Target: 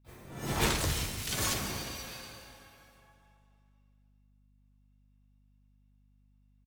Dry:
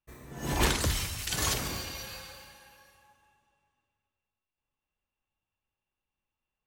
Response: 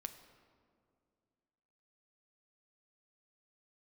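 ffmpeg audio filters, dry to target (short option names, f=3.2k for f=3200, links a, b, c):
-filter_complex "[0:a]asplit=4[a][b][c][d];[b]asetrate=35002,aresample=44100,atempo=1.25992,volume=-8dB[e];[c]asetrate=58866,aresample=44100,atempo=0.749154,volume=-6dB[f];[d]asetrate=88200,aresample=44100,atempo=0.5,volume=-9dB[g];[a][e][f][g]amix=inputs=4:normalize=0[h];[1:a]atrim=start_sample=2205[i];[h][i]afir=irnorm=-1:irlink=0,aeval=exprs='val(0)+0.000631*(sin(2*PI*50*n/s)+sin(2*PI*2*50*n/s)/2+sin(2*PI*3*50*n/s)/3+sin(2*PI*4*50*n/s)/4+sin(2*PI*5*50*n/s)/5)':c=same"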